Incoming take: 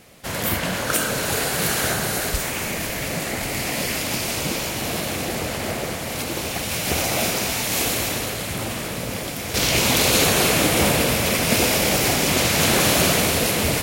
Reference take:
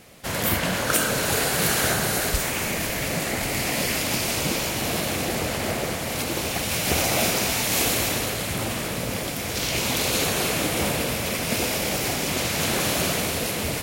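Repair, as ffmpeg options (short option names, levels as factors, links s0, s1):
-af "asetnsamples=n=441:p=0,asendcmd='9.54 volume volume -6dB',volume=1"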